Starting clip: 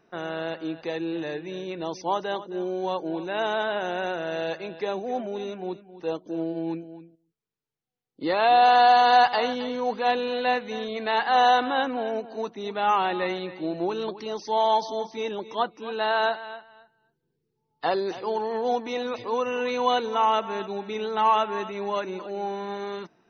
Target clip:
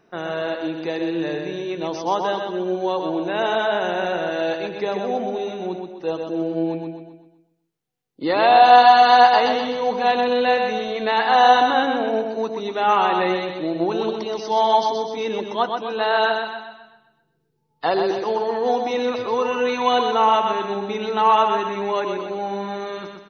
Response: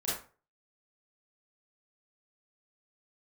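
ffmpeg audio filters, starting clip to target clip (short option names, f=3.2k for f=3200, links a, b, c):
-filter_complex "[0:a]aecho=1:1:126|252|378|504|630:0.562|0.236|0.0992|0.0417|0.0175,asplit=2[a][b];[1:a]atrim=start_sample=2205,lowpass=1.4k[c];[b][c]afir=irnorm=-1:irlink=0,volume=-22dB[d];[a][d]amix=inputs=2:normalize=0,volume=4dB"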